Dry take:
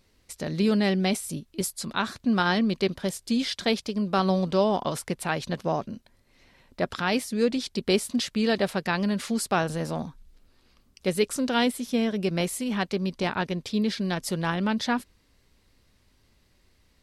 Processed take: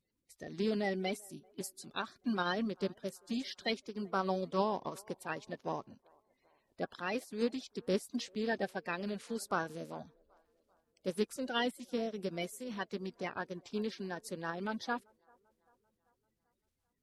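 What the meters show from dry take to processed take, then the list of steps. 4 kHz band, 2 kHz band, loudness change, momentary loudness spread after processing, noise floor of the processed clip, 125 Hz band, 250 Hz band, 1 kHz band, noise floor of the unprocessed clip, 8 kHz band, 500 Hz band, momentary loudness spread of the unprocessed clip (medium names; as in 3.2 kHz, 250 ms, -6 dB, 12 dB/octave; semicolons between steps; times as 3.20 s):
-12.0 dB, -9.5 dB, -11.0 dB, 10 LU, -83 dBFS, -14.5 dB, -13.0 dB, -9.0 dB, -64 dBFS, -14.5 dB, -9.5 dB, 8 LU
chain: coarse spectral quantiser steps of 30 dB; bass shelf 120 Hz -6 dB; feedback echo behind a band-pass 391 ms, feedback 53%, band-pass 690 Hz, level -19.5 dB; upward expansion 1.5:1, over -43 dBFS; trim -7.5 dB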